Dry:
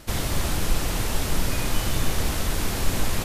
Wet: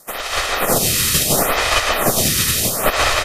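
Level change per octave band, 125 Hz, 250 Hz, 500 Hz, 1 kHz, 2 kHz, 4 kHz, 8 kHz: +1.5, +5.0, +12.0, +13.0, +13.0, +12.5, +13.5 decibels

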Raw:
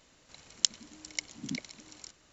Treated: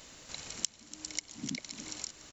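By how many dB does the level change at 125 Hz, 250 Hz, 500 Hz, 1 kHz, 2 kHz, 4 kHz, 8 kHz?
−0.5 dB, −1.0 dB, +1.5 dB, +3.0 dB, −2.5 dB, −5.5 dB, can't be measured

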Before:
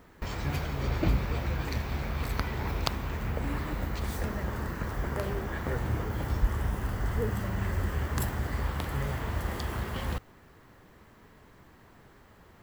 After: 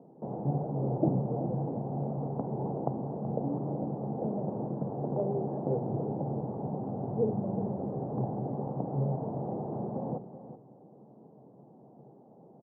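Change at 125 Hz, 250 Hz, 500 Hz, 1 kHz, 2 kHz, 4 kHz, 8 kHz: −2.0 dB, +4.0 dB, +4.5 dB, −1.0 dB, below −35 dB, below −40 dB, below −35 dB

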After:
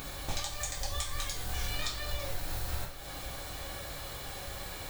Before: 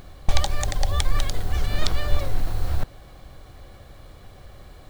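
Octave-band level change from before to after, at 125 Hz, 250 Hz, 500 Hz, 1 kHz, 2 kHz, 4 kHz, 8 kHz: −12.5, −9.0, −8.0, −7.5, −4.5, −4.5, −1.5 decibels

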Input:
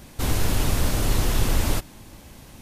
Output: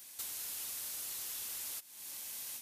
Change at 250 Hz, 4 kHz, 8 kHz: −37.0, −13.5, −7.5 decibels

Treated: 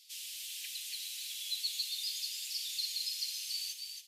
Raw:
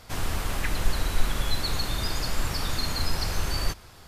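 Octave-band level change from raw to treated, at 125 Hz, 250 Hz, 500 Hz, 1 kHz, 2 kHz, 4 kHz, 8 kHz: below −40 dB, below −40 dB, below −40 dB, below −40 dB, −15.5 dB, −3.0 dB, −3.0 dB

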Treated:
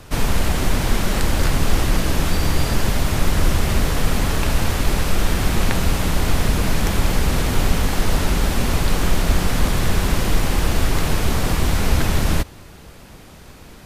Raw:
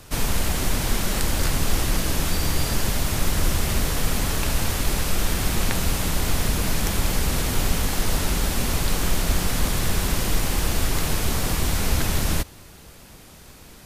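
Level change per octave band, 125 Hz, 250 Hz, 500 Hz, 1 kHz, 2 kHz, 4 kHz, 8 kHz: +5.0, +5.0, +5.0, +4.5, +3.5, +1.0, −1.5 decibels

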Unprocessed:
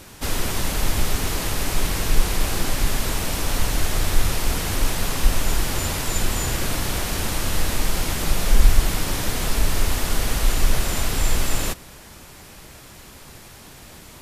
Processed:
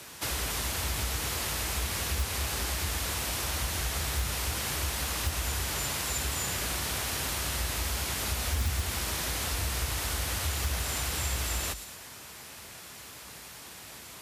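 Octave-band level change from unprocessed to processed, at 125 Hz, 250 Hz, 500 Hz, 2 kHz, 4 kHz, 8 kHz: −7.5, −12.0, −9.5, −5.5, −4.5, −4.5 decibels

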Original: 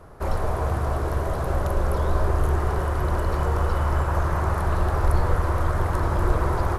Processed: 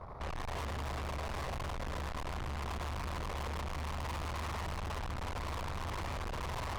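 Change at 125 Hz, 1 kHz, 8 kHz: −17.0, −12.5, −6.5 decibels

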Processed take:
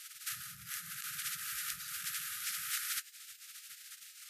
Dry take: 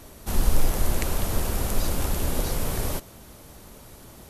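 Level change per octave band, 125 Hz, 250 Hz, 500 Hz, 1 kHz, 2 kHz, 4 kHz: −33.5 dB, below −30 dB, below −40 dB, −15.5 dB, −4.0 dB, −5.0 dB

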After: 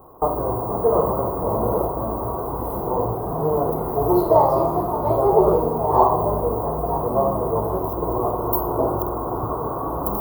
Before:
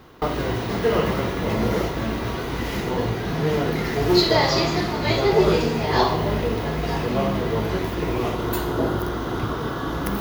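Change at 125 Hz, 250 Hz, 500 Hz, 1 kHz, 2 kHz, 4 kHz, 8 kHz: −2.5 dB, −2.0 dB, +3.0 dB, +5.5 dB, below −20 dB, below −30 dB, can't be measured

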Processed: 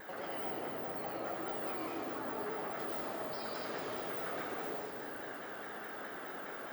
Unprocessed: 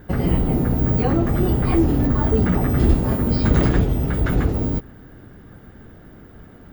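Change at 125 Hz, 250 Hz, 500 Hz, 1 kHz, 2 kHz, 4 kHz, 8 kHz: −38.0 dB, −25.0 dB, −15.0 dB, −10.0 dB, −9.5 dB, −9.5 dB, can't be measured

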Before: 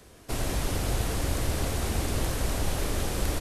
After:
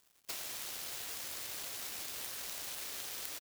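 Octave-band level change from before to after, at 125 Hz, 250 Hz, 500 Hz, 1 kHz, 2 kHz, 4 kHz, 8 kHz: −35.5, −27.0, −21.5, −16.0, −10.0, −6.0, −6.5 decibels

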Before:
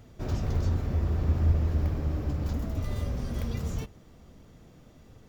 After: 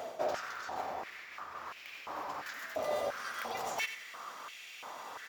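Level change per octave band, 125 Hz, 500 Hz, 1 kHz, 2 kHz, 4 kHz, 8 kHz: −36.5 dB, +2.0 dB, +8.0 dB, +9.5 dB, +5.0 dB, can't be measured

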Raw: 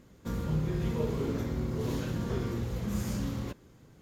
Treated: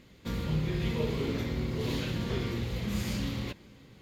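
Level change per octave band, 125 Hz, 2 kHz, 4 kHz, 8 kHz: 0.0, +6.0, +8.5, +0.5 decibels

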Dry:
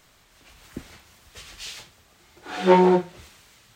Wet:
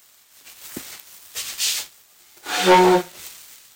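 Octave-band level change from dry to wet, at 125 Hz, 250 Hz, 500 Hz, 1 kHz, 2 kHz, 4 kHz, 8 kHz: −3.0, +0.5, +2.0, +5.0, +9.0, +13.0, +17.5 decibels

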